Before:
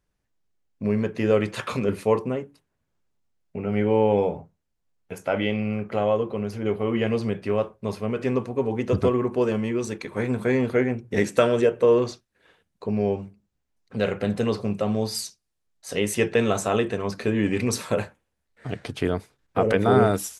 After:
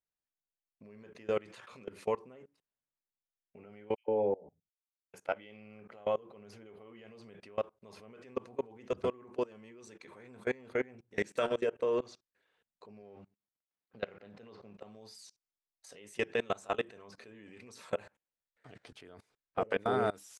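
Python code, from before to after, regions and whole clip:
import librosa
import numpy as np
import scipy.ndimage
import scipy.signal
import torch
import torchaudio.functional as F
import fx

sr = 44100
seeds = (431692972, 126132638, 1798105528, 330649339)

y = fx.chain(x, sr, fx.envelope_sharpen(power=1.5),
    fx.dispersion(late='lows', ms=129.0, hz=1300.0),
    fx.band_widen(depth_pct=100), at=(3.95, 5.14))
y = fx.chain(y, sr, fx.law_mismatch(coded='A'),
    fx.highpass(hz=58.0, slope=12),
    fx.air_absorb(metres=150.0), at=(13.02, 14.81))
y = fx.low_shelf(y, sr, hz=250.0, db=-12.0)
y = fx.level_steps(y, sr, step_db=24)
y = scipy.signal.sosfilt(scipy.signal.butter(2, 9500.0, 'lowpass', fs=sr, output='sos'), y)
y = y * librosa.db_to_amplitude(-5.0)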